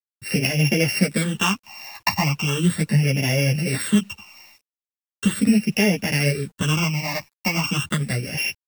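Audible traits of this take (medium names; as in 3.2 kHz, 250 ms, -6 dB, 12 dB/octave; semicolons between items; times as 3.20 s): a buzz of ramps at a fixed pitch in blocks of 16 samples; phasing stages 8, 0.38 Hz, lowest notch 420–1200 Hz; a quantiser's noise floor 10-bit, dither none; a shimmering, thickened sound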